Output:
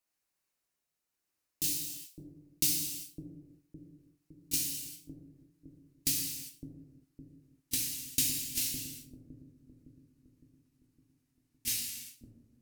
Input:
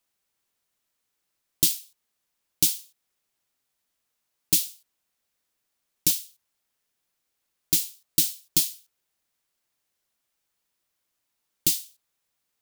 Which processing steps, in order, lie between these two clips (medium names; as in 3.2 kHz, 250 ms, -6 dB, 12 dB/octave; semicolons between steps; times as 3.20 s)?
pitch bend over the whole clip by -5 st starting unshifted; peaking EQ 3.4 kHz -6 dB 0.26 oct; bucket-brigade echo 560 ms, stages 2048, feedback 53%, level -4 dB; gated-style reverb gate 420 ms falling, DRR -1.5 dB; trim -8.5 dB